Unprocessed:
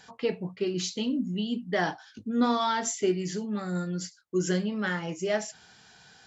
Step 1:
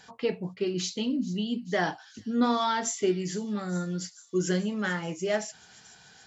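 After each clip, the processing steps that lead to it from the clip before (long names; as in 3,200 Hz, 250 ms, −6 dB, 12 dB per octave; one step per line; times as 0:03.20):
delay with a high-pass on its return 435 ms, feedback 70%, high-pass 5,100 Hz, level −14 dB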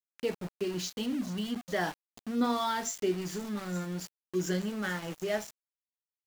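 centre clipping without the shift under −35.5 dBFS
level −4 dB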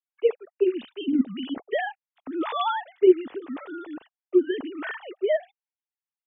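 three sine waves on the formant tracks
level +7.5 dB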